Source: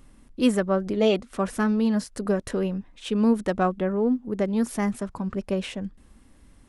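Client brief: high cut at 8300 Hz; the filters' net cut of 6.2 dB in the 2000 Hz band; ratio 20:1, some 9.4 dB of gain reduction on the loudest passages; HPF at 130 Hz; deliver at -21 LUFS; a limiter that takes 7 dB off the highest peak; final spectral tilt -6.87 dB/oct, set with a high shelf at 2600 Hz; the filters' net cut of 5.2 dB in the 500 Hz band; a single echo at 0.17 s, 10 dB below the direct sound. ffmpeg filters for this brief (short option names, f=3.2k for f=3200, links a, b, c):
-af "highpass=130,lowpass=8.3k,equalizer=f=500:t=o:g=-6,equalizer=f=2k:t=o:g=-4.5,highshelf=f=2.6k:g=-8,acompressor=threshold=-26dB:ratio=20,alimiter=level_in=1.5dB:limit=-24dB:level=0:latency=1,volume=-1.5dB,aecho=1:1:170:0.316,volume=13.5dB"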